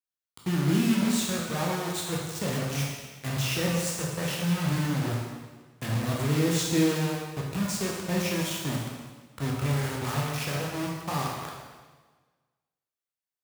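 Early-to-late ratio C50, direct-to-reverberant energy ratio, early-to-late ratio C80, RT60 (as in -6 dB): 1.0 dB, -3.0 dB, 3.5 dB, 1.4 s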